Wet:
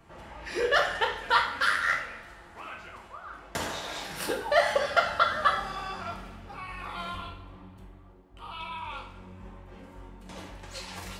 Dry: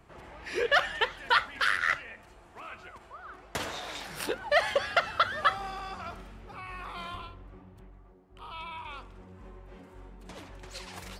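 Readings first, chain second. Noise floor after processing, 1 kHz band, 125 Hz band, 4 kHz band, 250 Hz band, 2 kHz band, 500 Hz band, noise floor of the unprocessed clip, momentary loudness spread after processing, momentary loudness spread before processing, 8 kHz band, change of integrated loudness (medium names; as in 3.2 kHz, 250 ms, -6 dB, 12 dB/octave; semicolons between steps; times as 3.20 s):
-51 dBFS, +3.0 dB, +3.0 dB, +0.5 dB, +3.0 dB, +0.5 dB, +3.0 dB, -55 dBFS, 22 LU, 21 LU, +3.0 dB, +1.5 dB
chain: dynamic bell 2.6 kHz, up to -6 dB, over -43 dBFS, Q 1.7; two-slope reverb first 0.53 s, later 2.4 s, from -20 dB, DRR 0 dB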